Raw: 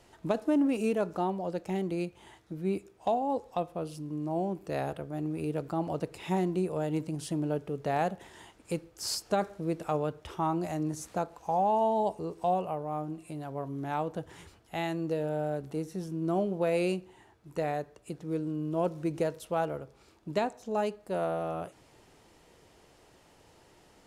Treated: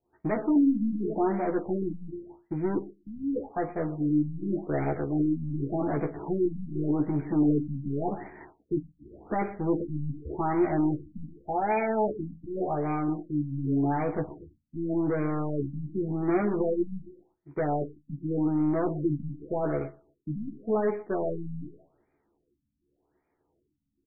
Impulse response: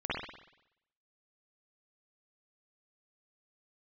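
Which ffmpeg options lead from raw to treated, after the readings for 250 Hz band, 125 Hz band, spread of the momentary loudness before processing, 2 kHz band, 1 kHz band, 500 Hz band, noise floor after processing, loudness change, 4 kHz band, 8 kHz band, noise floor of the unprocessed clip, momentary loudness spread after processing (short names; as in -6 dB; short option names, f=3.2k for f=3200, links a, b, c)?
+6.0 dB, +4.5 dB, 10 LU, +1.0 dB, -1.0 dB, +1.0 dB, -77 dBFS, +3.0 dB, under -40 dB, under -35 dB, -61 dBFS, 12 LU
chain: -filter_complex "[0:a]asoftclip=type=tanh:threshold=-34.5dB,lowpass=f=4.1k:t=q:w=6.8,aecho=1:1:121|242|363|484|605:0.2|0.0958|0.046|0.0221|0.0106,agate=range=-33dB:threshold=-41dB:ratio=3:detection=peak,equalizer=f=330:t=o:w=0.62:g=8,bandreject=f=550:w=12,asplit=2[a][b];[b]adelay=14,volume=-3.5dB[c];[a][c]amix=inputs=2:normalize=0,asplit=2[d][e];[1:a]atrim=start_sample=2205,afade=t=out:st=0.2:d=0.01,atrim=end_sample=9261,asetrate=48510,aresample=44100[f];[e][f]afir=irnorm=-1:irlink=0,volume=-25dB[g];[d][g]amix=inputs=2:normalize=0,afftfilt=real='re*lt(b*sr/1024,270*pow(2500/270,0.5+0.5*sin(2*PI*0.87*pts/sr)))':imag='im*lt(b*sr/1024,270*pow(2500/270,0.5+0.5*sin(2*PI*0.87*pts/sr)))':win_size=1024:overlap=0.75,volume=6.5dB"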